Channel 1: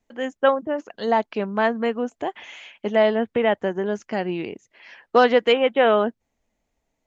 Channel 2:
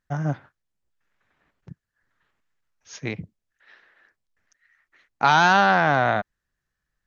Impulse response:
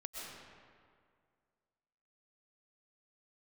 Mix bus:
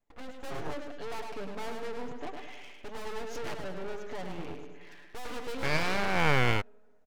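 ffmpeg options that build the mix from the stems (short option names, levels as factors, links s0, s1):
-filter_complex "[0:a]highshelf=f=2300:g=-7.5,aecho=1:1:6.9:0.76,aeval=exprs='(tanh(28.2*val(0)+0.35)-tanh(0.35))/28.2':c=same,volume=0.376,asplit=4[s0][s1][s2][s3];[s1]volume=0.422[s4];[s2]volume=0.668[s5];[1:a]adelay=400,volume=0.708[s6];[s3]apad=whole_len=333423[s7];[s6][s7]sidechaincompress=threshold=0.00501:ratio=8:attack=16:release=261[s8];[2:a]atrim=start_sample=2205[s9];[s4][s9]afir=irnorm=-1:irlink=0[s10];[s5]aecho=0:1:104|208|312|416|520|624:1|0.46|0.212|0.0973|0.0448|0.0206[s11];[s0][s8][s10][s11]amix=inputs=4:normalize=0,aeval=exprs='abs(val(0))':c=same"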